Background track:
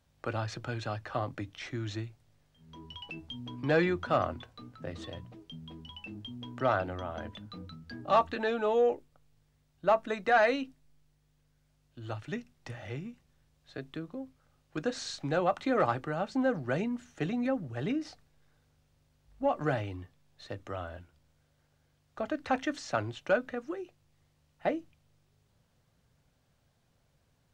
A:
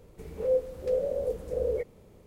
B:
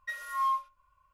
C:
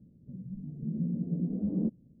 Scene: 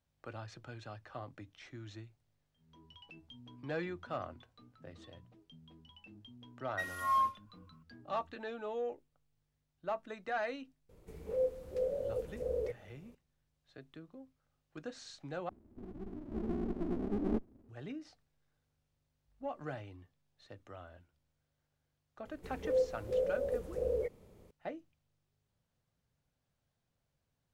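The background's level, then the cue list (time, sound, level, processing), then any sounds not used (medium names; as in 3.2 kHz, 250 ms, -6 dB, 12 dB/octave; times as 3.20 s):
background track -12 dB
6.70 s: add B -1.5 dB
10.89 s: add A -7 dB
15.49 s: replace with C -1 dB + comb filter that takes the minimum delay 3.3 ms
22.25 s: add A -5 dB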